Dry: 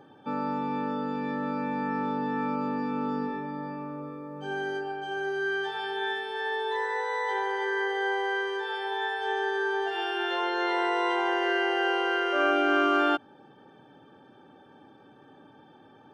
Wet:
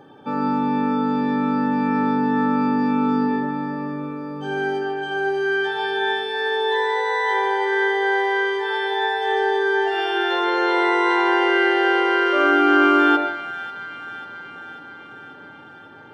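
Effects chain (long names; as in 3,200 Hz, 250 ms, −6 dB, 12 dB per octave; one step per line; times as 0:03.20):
delay with a high-pass on its return 542 ms, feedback 67%, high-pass 1,700 Hz, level −11.5 dB
on a send at −4 dB: convolution reverb RT60 0.80 s, pre-delay 53 ms
on the sum: level +6 dB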